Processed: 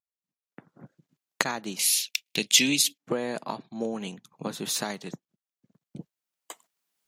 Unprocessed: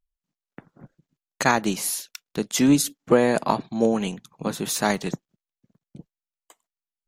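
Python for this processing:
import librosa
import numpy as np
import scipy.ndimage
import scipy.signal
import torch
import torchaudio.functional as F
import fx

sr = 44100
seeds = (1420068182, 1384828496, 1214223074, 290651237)

y = fx.recorder_agc(x, sr, target_db=-7.0, rise_db_per_s=14.0, max_gain_db=30)
y = fx.dynamic_eq(y, sr, hz=3900.0, q=1.2, threshold_db=-36.0, ratio=4.0, max_db=5)
y = scipy.signal.sosfilt(scipy.signal.butter(2, 120.0, 'highpass', fs=sr, output='sos'), y)
y = fx.high_shelf_res(y, sr, hz=1800.0, db=10.0, q=3.0, at=(1.79, 2.98))
y = y * librosa.db_to_amplitude(-12.5)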